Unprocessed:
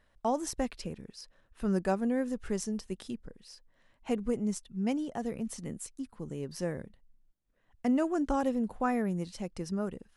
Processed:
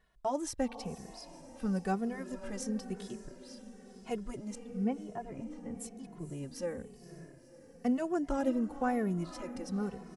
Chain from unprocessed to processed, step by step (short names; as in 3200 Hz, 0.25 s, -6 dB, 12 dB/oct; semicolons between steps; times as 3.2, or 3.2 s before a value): 4.55–5.75 LPF 1700 Hz 12 dB/oct; diffused feedback echo 0.511 s, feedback 56%, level -13 dB; endless flanger 2.3 ms -1 Hz